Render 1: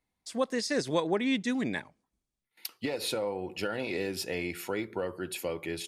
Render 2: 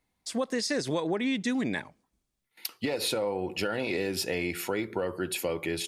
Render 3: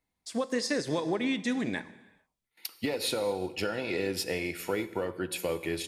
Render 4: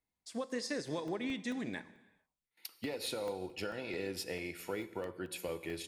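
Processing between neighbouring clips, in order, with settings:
in parallel at -1 dB: limiter -24.5 dBFS, peak gain reduction 9.5 dB; on the sum: compressor, threshold -25 dBFS, peak gain reduction 6 dB
reverb, pre-delay 3 ms, DRR 10.5 dB; upward expander 1.5:1, over -38 dBFS
crackling interface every 0.22 s, samples 64, zero, from 0.86; gain -8 dB

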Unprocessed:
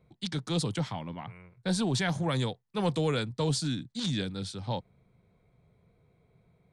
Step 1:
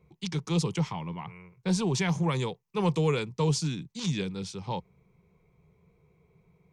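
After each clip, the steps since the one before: ripple EQ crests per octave 0.77, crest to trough 9 dB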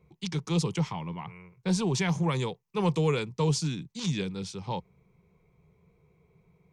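nothing audible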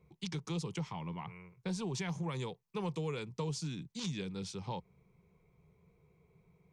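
compressor 3:1, threshold -33 dBFS, peak gain reduction 9 dB; gain -3.5 dB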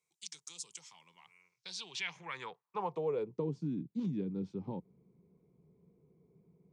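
band-pass sweep 7800 Hz -> 270 Hz, 1.32–3.57; gain +9.5 dB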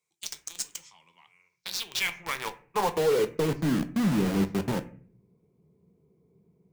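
in parallel at -3.5 dB: companded quantiser 2-bit; on the sum: reverb RT60 0.45 s, pre-delay 9 ms, DRR 8.5 dB; gain +2 dB

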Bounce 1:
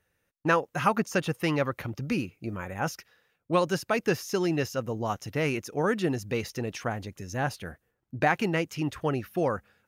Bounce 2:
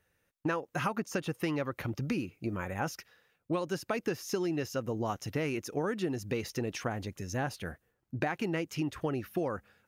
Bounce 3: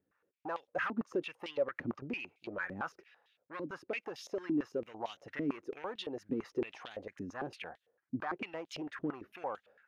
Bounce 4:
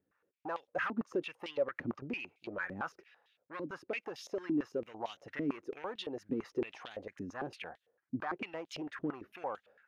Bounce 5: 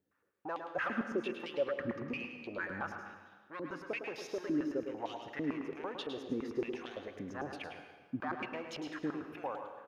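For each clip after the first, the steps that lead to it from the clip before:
dynamic EQ 320 Hz, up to +4 dB, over -40 dBFS, Q 1.9; compressor 6:1, threshold -29 dBFS, peak gain reduction 11.5 dB
soft clip -28.5 dBFS, distortion -14 dB; stepped band-pass 8.9 Hz 270–3500 Hz; gain +8.5 dB
nothing audible
echo 0.107 s -7.5 dB; plate-style reverb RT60 1.4 s, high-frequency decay 0.75×, pre-delay 0.105 s, DRR 8 dB; gain -1 dB

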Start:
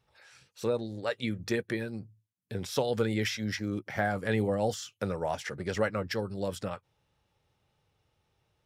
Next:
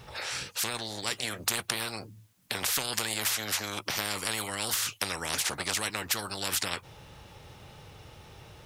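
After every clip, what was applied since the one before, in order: spectral compressor 10:1; gain +5.5 dB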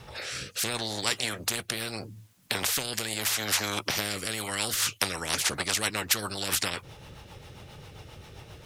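rotary speaker horn 0.75 Hz, later 7.5 Hz, at 4.27; gain +5 dB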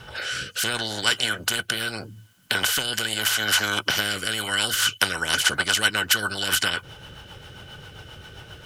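small resonant body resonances 1500/3000 Hz, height 17 dB, ringing for 35 ms; gain +2.5 dB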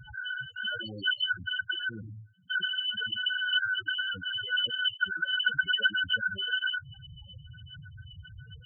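loudest bins only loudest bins 4

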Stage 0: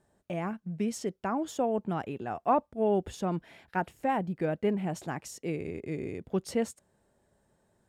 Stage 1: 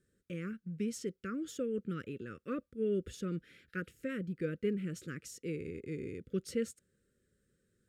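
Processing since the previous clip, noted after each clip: elliptic band-stop 510–1300 Hz, stop band 40 dB; gain -4.5 dB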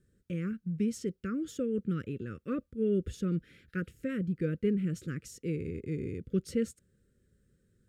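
low shelf 230 Hz +11.5 dB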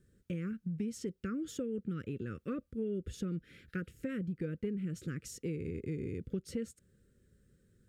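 compressor 4:1, threshold -37 dBFS, peak gain reduction 11.5 dB; gain +2 dB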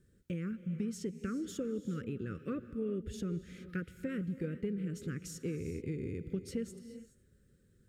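non-linear reverb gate 0.45 s rising, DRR 11.5 dB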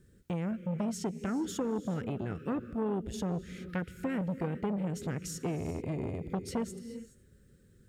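core saturation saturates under 650 Hz; gain +6 dB

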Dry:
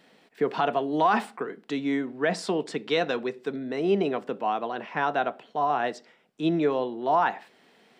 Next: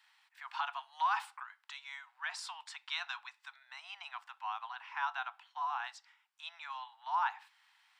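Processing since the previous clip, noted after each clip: steep high-pass 850 Hz 72 dB/oct; dynamic EQ 1900 Hz, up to -5 dB, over -49 dBFS, Q 5.1; gain -6.5 dB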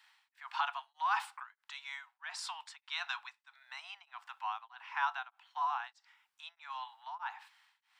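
beating tremolo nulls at 1.6 Hz; gain +3 dB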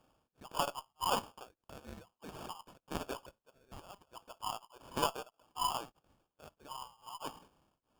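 sample-rate reducer 2000 Hz, jitter 0%; added harmonics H 2 -13 dB, 3 -25 dB, 7 -28 dB, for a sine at -20.5 dBFS; gain +1 dB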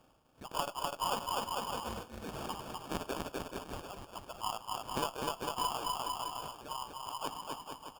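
on a send: bouncing-ball echo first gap 0.25 s, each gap 0.8×, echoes 5; on the sum: compressor 3:1, threshold -38 dBFS, peak gain reduction 9.5 dB; gain +5 dB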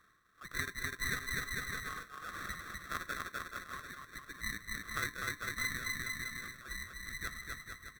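band-swap scrambler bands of 1000 Hz; gain -2 dB

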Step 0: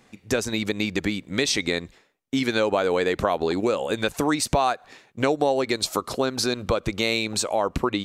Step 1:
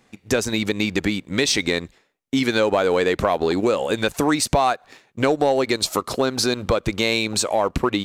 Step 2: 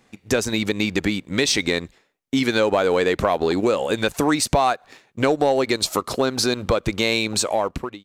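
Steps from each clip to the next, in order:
sample leveller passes 1
ending faded out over 0.54 s

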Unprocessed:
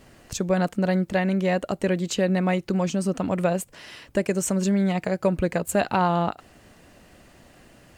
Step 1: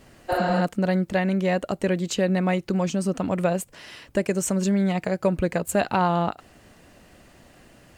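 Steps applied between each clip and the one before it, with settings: spectral repair 0.32–0.59, 250–8900 Hz after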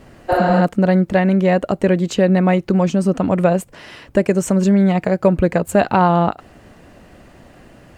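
high shelf 2600 Hz -9.5 dB; gain +8.5 dB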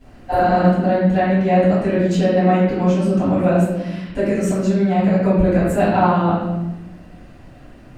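reverb RT60 1.0 s, pre-delay 4 ms, DRR -12.5 dB; gain -16 dB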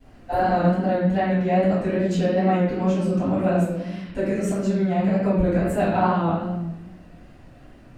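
wow and flutter 53 cents; gain -5 dB

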